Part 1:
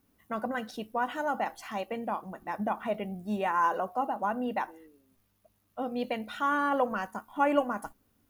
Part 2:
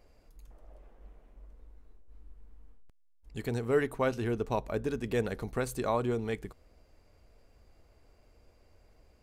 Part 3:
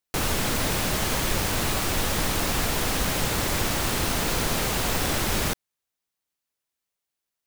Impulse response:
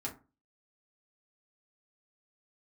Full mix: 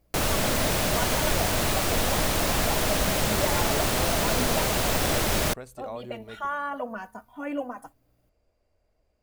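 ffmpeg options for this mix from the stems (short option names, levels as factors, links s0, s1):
-filter_complex "[0:a]aeval=exprs='val(0)+0.000708*(sin(2*PI*60*n/s)+sin(2*PI*2*60*n/s)/2+sin(2*PI*3*60*n/s)/3+sin(2*PI*4*60*n/s)/4+sin(2*PI*5*60*n/s)/5)':c=same,asplit=2[s0][s1];[s1]adelay=3.2,afreqshift=0.35[s2];[s0][s2]amix=inputs=2:normalize=1,volume=0.794[s3];[1:a]volume=0.299[s4];[2:a]volume=1[s5];[s3][s4][s5]amix=inputs=3:normalize=0,equalizer=f=620:w=4:g=6.5"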